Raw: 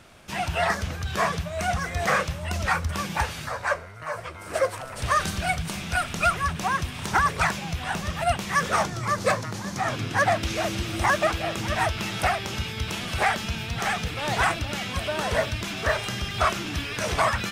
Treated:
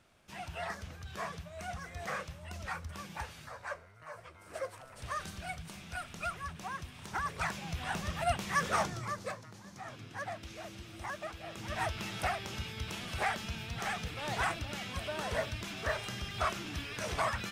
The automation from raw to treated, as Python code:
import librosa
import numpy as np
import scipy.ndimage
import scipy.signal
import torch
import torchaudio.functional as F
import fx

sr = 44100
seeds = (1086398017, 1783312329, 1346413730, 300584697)

y = fx.gain(x, sr, db=fx.line((7.11, -15.5), (7.82, -7.5), (8.92, -7.5), (9.35, -19.0), (11.34, -19.0), (11.84, -10.0)))